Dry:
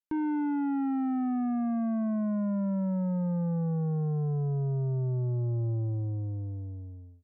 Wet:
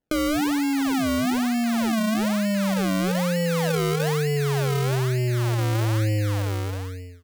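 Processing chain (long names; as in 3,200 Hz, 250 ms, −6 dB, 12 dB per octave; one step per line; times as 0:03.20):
parametric band 480 Hz +14 dB 0.67 octaves
in parallel at +1 dB: compressor whose output falls as the input rises −30 dBFS, ratio −0.5
on the sum: sample-and-hold swept by an LFO 35×, swing 100% 1.1 Hz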